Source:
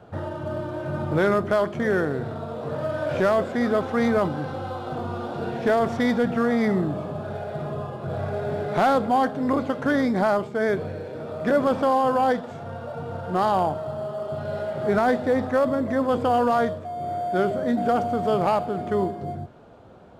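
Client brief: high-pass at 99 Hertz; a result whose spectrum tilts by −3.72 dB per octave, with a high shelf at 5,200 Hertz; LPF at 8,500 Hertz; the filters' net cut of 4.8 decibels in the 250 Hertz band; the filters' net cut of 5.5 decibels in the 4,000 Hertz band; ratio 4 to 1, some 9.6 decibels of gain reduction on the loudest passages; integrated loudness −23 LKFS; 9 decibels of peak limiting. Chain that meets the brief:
high-pass filter 99 Hz
low-pass filter 8,500 Hz
parametric band 250 Hz −5.5 dB
parametric band 4,000 Hz −5 dB
high-shelf EQ 5,200 Hz −5 dB
downward compressor 4 to 1, threshold −29 dBFS
level +12 dB
brickwall limiter −14 dBFS

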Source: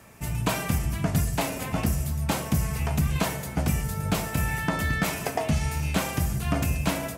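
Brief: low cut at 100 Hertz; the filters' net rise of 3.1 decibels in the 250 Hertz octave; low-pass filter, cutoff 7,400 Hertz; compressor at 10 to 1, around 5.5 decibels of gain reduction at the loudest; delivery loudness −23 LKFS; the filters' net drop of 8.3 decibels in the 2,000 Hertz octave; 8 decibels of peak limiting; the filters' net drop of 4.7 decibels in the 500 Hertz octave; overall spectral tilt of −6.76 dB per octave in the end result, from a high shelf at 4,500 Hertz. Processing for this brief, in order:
high-pass filter 100 Hz
low-pass filter 7,400 Hz
parametric band 250 Hz +6.5 dB
parametric band 500 Hz −7.5 dB
parametric band 2,000 Hz −8.5 dB
high-shelf EQ 4,500 Hz −7.5 dB
downward compressor 10 to 1, threshold −24 dBFS
level +10 dB
brickwall limiter −11.5 dBFS

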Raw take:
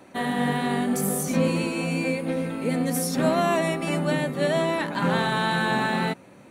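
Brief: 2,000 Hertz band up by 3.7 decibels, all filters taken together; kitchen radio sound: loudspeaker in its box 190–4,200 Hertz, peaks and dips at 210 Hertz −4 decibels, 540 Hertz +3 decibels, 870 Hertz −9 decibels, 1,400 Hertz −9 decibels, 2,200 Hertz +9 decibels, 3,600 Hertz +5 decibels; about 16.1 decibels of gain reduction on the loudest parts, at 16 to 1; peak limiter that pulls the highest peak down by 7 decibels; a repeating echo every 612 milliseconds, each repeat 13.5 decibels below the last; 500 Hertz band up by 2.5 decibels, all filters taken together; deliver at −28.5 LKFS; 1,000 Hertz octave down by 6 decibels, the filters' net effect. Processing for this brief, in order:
parametric band 500 Hz +3.5 dB
parametric band 1,000 Hz −4 dB
parametric band 2,000 Hz +3 dB
downward compressor 16 to 1, threshold −32 dBFS
brickwall limiter −28.5 dBFS
loudspeaker in its box 190–4,200 Hz, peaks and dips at 210 Hz −4 dB, 540 Hz +3 dB, 870 Hz −9 dB, 1,400 Hz −9 dB, 2,200 Hz +9 dB, 3,600 Hz +5 dB
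repeating echo 612 ms, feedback 21%, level −13.5 dB
level +9 dB

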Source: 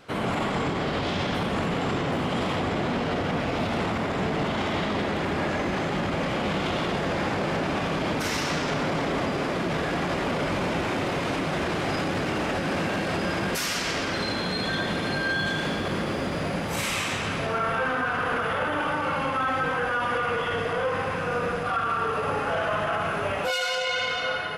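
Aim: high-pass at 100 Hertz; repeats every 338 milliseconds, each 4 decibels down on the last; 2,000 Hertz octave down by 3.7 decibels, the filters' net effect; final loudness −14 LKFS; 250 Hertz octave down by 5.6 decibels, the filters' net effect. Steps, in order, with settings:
high-pass filter 100 Hz
parametric band 250 Hz −7.5 dB
parametric band 2,000 Hz −5 dB
repeating echo 338 ms, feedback 63%, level −4 dB
level +13 dB

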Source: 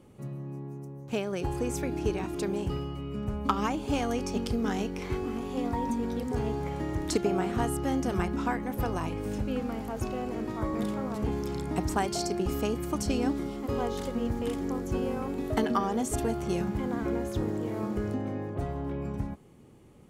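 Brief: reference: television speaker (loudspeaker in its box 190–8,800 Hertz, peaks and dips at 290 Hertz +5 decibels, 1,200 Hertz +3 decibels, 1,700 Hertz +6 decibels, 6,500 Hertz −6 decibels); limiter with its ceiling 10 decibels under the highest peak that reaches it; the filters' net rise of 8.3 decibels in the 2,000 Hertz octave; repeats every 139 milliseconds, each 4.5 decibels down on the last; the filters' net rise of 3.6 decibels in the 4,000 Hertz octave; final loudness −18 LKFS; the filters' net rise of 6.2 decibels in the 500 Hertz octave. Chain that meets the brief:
parametric band 500 Hz +7 dB
parametric band 2,000 Hz +4.5 dB
parametric band 4,000 Hz +3.5 dB
brickwall limiter −19 dBFS
loudspeaker in its box 190–8,800 Hz, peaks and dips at 290 Hz +5 dB, 1,200 Hz +3 dB, 1,700 Hz +6 dB, 6,500 Hz −6 dB
repeating echo 139 ms, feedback 60%, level −4.5 dB
level +9 dB

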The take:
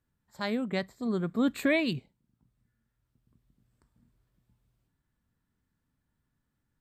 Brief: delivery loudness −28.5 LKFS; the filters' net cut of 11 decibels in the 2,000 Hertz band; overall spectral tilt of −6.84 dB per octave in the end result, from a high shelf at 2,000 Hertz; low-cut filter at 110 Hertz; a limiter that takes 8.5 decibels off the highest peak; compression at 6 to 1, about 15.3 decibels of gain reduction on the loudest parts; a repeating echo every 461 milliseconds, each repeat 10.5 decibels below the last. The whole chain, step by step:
high-pass filter 110 Hz
high-shelf EQ 2,000 Hz −8 dB
parametric band 2,000 Hz −8.5 dB
downward compressor 6 to 1, threshold −40 dBFS
brickwall limiter −37.5 dBFS
repeating echo 461 ms, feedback 30%, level −10.5 dB
level +19 dB

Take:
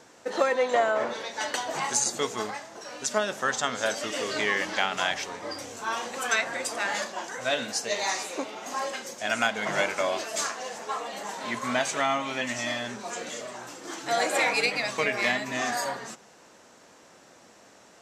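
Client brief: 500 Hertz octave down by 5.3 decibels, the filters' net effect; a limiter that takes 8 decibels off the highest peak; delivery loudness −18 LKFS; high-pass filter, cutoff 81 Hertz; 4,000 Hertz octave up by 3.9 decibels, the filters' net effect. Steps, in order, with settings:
high-pass filter 81 Hz
parametric band 500 Hz −7 dB
parametric band 4,000 Hz +5 dB
level +11.5 dB
brickwall limiter −5.5 dBFS

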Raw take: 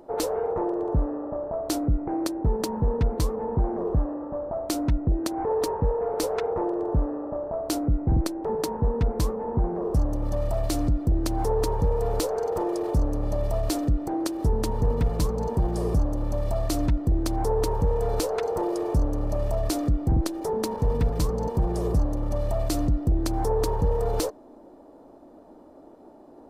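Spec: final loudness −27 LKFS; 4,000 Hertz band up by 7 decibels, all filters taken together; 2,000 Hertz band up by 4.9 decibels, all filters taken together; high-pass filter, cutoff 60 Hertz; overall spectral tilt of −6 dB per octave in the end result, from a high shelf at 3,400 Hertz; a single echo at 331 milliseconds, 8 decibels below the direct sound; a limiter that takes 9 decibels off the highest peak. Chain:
high-pass filter 60 Hz
parametric band 2,000 Hz +4 dB
high-shelf EQ 3,400 Hz +3.5 dB
parametric band 4,000 Hz +5 dB
brickwall limiter −19 dBFS
single-tap delay 331 ms −8 dB
level +1.5 dB

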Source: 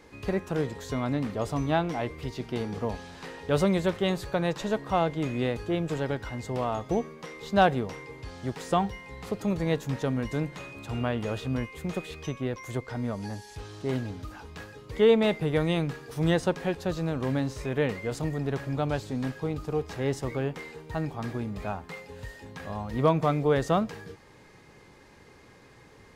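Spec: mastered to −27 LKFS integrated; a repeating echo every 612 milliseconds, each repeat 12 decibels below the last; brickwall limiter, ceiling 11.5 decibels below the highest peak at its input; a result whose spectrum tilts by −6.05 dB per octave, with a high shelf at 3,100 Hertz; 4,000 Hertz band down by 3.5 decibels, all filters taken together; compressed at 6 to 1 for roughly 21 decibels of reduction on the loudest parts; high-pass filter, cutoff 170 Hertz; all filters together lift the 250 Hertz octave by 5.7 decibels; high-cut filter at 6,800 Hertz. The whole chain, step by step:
high-pass filter 170 Hz
low-pass filter 6,800 Hz
parametric band 250 Hz +9 dB
high-shelf EQ 3,100 Hz +6.5 dB
parametric band 4,000 Hz −9 dB
downward compressor 6 to 1, threshold −36 dBFS
brickwall limiter −33 dBFS
repeating echo 612 ms, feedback 25%, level −12 dB
level +15.5 dB

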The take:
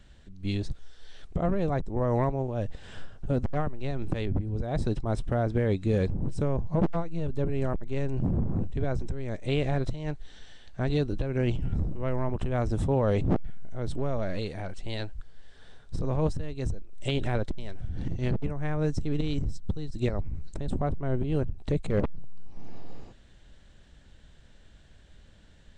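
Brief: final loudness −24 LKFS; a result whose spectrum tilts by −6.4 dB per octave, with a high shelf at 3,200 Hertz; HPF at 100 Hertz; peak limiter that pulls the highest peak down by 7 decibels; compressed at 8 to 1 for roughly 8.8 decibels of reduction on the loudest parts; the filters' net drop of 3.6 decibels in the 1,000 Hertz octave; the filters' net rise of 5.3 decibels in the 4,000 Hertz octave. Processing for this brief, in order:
high-pass filter 100 Hz
parametric band 1,000 Hz −6 dB
high-shelf EQ 3,200 Hz +4.5 dB
parametric band 4,000 Hz +4 dB
downward compressor 8 to 1, threshold −31 dBFS
level +14.5 dB
brickwall limiter −13 dBFS

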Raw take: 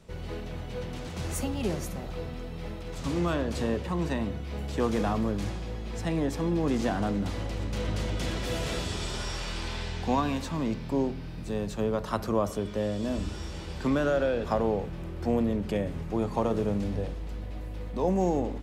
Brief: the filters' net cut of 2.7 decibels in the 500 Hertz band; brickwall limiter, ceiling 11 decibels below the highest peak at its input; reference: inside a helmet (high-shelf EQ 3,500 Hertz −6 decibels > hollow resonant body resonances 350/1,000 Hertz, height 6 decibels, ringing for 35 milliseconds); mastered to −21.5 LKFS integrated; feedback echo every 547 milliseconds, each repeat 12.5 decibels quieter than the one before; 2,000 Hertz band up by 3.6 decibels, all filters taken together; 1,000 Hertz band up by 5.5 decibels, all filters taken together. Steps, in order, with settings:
parametric band 500 Hz −5.5 dB
parametric band 1,000 Hz +8.5 dB
parametric band 2,000 Hz +3.5 dB
brickwall limiter −19.5 dBFS
high-shelf EQ 3,500 Hz −6 dB
repeating echo 547 ms, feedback 24%, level −12.5 dB
hollow resonant body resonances 350/1,000 Hz, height 6 dB, ringing for 35 ms
level +9 dB

